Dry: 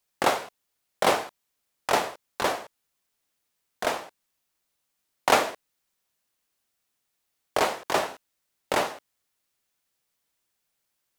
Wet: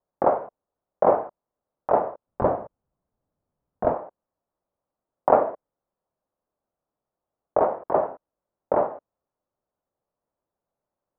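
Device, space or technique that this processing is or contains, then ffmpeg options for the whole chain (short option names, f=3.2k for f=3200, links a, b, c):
under water: -filter_complex "[0:a]asettb=1/sr,asplit=3[a][b][c];[a]atrim=end=2.274[d];[b]atrim=start=2.27:end=3.94,asetpts=PTS-STARTPTS,afade=t=in:d=0.004:c=qsin,afade=t=out:st=1.666:d=0.004:c=qsin,bass=f=250:g=13,treble=f=4k:g=9[e];[c]atrim=start=3.936[f];[d][e]acrossfade=d=0.004:c1=hsin:c2=qsin[g];[g][f]acrossfade=d=0.004:c1=qsin:c2=hsin,lowpass=f=1.1k:w=0.5412,lowpass=f=1.1k:w=1.3066,equalizer=f=580:t=o:w=0.59:g=6,volume=1.5dB"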